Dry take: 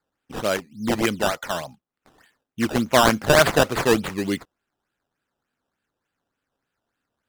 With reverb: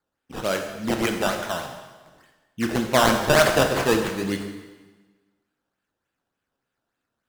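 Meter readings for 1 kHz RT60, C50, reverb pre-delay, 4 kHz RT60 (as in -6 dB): 1.3 s, 6.0 dB, 8 ms, 1.2 s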